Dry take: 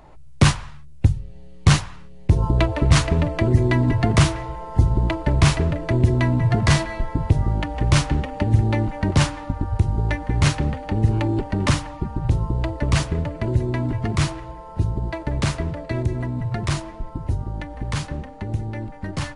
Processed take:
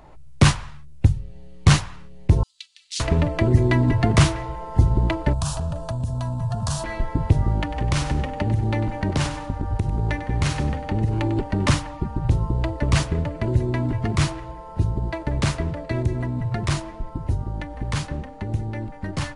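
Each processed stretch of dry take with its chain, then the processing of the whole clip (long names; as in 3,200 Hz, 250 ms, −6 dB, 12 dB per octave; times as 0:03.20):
0:02.43–0:03.00: inverse Chebyshev high-pass filter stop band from 660 Hz, stop band 80 dB + high-frequency loss of the air 52 metres
0:05.33–0:06.84: parametric band 9,000 Hz +8 dB 1.3 octaves + downward compressor 4 to 1, threshold −20 dBFS + phaser with its sweep stopped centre 870 Hz, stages 4
0:07.61–0:11.37: downward compressor 5 to 1, threshold −17 dBFS + repeating echo 98 ms, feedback 29%, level −12 dB
whole clip: no processing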